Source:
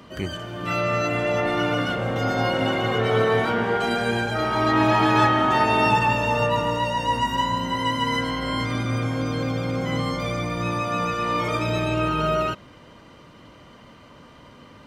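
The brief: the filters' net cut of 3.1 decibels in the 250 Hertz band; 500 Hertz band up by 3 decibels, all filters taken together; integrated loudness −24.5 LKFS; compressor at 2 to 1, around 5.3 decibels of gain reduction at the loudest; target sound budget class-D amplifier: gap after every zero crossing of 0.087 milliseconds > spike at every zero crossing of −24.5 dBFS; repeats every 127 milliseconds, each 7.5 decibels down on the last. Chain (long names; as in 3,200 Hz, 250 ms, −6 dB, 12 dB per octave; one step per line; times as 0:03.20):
parametric band 250 Hz −6 dB
parametric band 500 Hz +5 dB
downward compressor 2 to 1, threshold −24 dBFS
repeating echo 127 ms, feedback 42%, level −7.5 dB
gap after every zero crossing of 0.087 ms
spike at every zero crossing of −24.5 dBFS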